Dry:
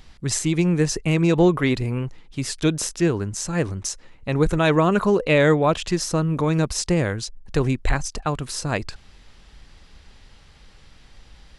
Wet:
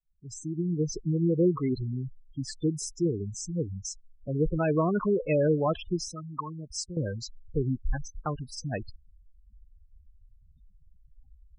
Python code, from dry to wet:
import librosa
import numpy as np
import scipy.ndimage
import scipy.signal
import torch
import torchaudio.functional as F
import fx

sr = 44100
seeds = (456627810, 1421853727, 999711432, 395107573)

y = fx.fade_in_head(x, sr, length_s=0.93)
y = fx.spec_gate(y, sr, threshold_db=-10, keep='strong')
y = fx.low_shelf_res(y, sr, hz=780.0, db=-11.0, q=3.0, at=(6.08, 6.97))
y = y * librosa.db_to_amplitude(-6.5)